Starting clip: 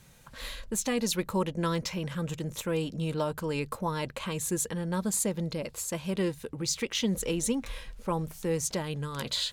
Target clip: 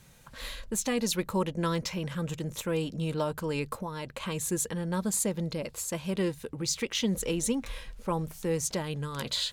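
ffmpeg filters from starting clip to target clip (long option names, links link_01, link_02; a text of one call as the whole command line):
ffmpeg -i in.wav -filter_complex "[0:a]asettb=1/sr,asplit=3[link_01][link_02][link_03];[link_01]atrim=end=3.824[link_04];[link_02]atrim=start=3.82:end=4.23,asetpts=PTS-STARTPTS,afade=type=in:duration=0.004:curve=qsin,afade=type=out:start_time=0.406:duration=0.004:curve=qsin,acompressor=threshold=-33dB:ratio=6[link_05];[link_03]atrim=start=4.226[link_06];[link_04][link_05]acrossfade=duration=0.004:curve1=hsin:curve2=qsin[link_07];[link_07][link_06]acrossfade=duration=0.004:curve1=qsin:curve2=hsin" out.wav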